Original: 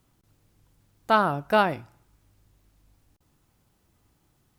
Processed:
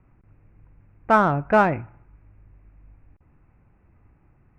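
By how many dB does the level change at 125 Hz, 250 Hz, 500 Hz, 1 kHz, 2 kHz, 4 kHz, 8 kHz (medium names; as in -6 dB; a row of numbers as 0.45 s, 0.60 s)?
+7.5 dB, +5.5 dB, +4.0 dB, +3.0 dB, +3.0 dB, -9.0 dB, no reading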